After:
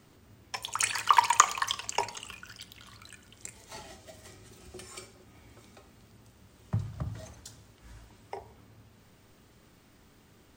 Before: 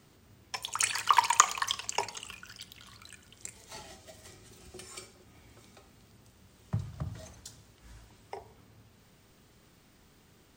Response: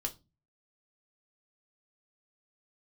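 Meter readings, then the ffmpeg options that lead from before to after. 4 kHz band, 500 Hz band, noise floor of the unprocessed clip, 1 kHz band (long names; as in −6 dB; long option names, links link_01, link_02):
0.0 dB, +2.0 dB, −62 dBFS, +2.0 dB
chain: -filter_complex "[0:a]asplit=2[link_01][link_02];[1:a]atrim=start_sample=2205,lowpass=3100[link_03];[link_02][link_03]afir=irnorm=-1:irlink=0,volume=-10dB[link_04];[link_01][link_04]amix=inputs=2:normalize=0"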